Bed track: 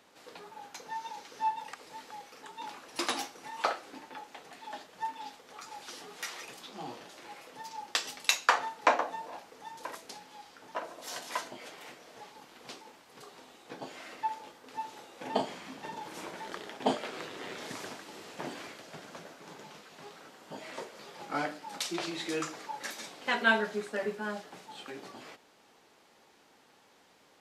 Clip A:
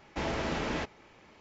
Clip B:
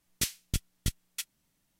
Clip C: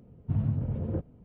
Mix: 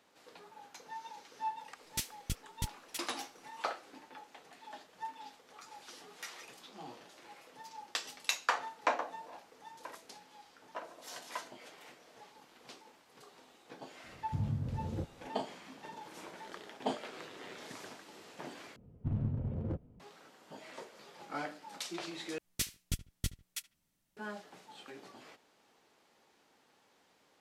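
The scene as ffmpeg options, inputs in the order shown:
-filter_complex "[2:a]asplit=2[a][b];[3:a]asplit=2[c][d];[0:a]volume=-6.5dB[e];[d]aeval=exprs='clip(val(0),-1,0.0376)':c=same[f];[b]asplit=2[g][h];[h]adelay=74,lowpass=f=2.5k:p=1,volume=-17.5dB,asplit=2[i][j];[j]adelay=74,lowpass=f=2.5k:p=1,volume=0.27[k];[g][i][k]amix=inputs=3:normalize=0[l];[e]asplit=3[m][n][o];[m]atrim=end=18.764[p];[f]atrim=end=1.24,asetpts=PTS-STARTPTS,volume=-5dB[q];[n]atrim=start=19.996:end=22.384[r];[l]atrim=end=1.79,asetpts=PTS-STARTPTS,volume=-5dB[s];[o]atrim=start=24.166[t];[a]atrim=end=1.79,asetpts=PTS-STARTPTS,volume=-6.5dB,afade=t=in:d=0.004:c=hsin,afade=t=out:st=1.786:d=0.004:c=hsin,adelay=1760[u];[c]atrim=end=1.24,asetpts=PTS-STARTPTS,volume=-7dB,afade=t=in:d=0.004:c=hsin,afade=t=out:st=1.236:d=0.004:c=hsin,adelay=14040[v];[p][q]acrossfade=d=0.004:c1=hsin:c2=hsin[w];[w][r]acrossfade=d=0.004:c1=hsin:c2=hsin[x];[x][s]acrossfade=d=0.004:c1=hsin:c2=hsin[y];[y][t]acrossfade=d=0.004:c1=hsin:c2=hsin[z];[z][u][v]amix=inputs=3:normalize=0"

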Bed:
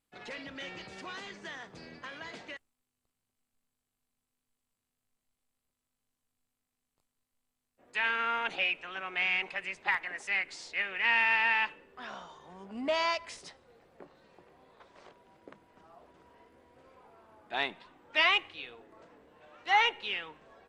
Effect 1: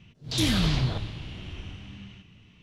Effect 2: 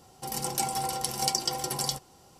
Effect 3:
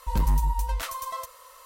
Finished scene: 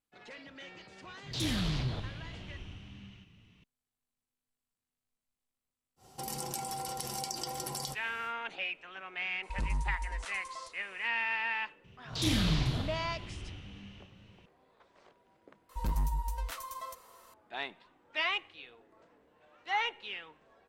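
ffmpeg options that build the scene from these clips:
-filter_complex "[1:a]asplit=2[a][b];[3:a]asplit=2[c][d];[0:a]volume=-6.5dB[e];[a]asoftclip=type=tanh:threshold=-18dB[f];[2:a]acompressor=threshold=-38dB:ratio=4:attack=28:release=29:knee=1:detection=rms[g];[c]aresample=22050,aresample=44100[h];[b]aecho=1:1:44|437:0.531|0.168[i];[f]atrim=end=2.62,asetpts=PTS-STARTPTS,volume=-6.5dB,afade=t=in:d=0.004:c=hsin,afade=t=out:st=2.616:d=0.004:c=hsin,adelay=1020[j];[g]atrim=end=2.39,asetpts=PTS-STARTPTS,volume=-2dB,afade=t=in:d=0.1,afade=t=out:st=2.29:d=0.1,adelay=5960[k];[h]atrim=end=1.65,asetpts=PTS-STARTPTS,volume=-10.5dB,afade=t=in:d=0.004:c=hsin,afade=t=out:st=1.646:d=0.004:c=hsin,adelay=9430[l];[i]atrim=end=2.62,asetpts=PTS-STARTPTS,volume=-6dB,afade=t=in:d=0.004:c=hsin,afade=t=out:st=2.616:d=0.004:c=hsin,adelay=11840[m];[d]atrim=end=1.65,asetpts=PTS-STARTPTS,volume=-8.5dB,afade=t=in:d=0.004:c=hsin,afade=t=out:st=1.646:d=0.004:c=hsin,adelay=15690[n];[e][j][k][l][m][n]amix=inputs=6:normalize=0"

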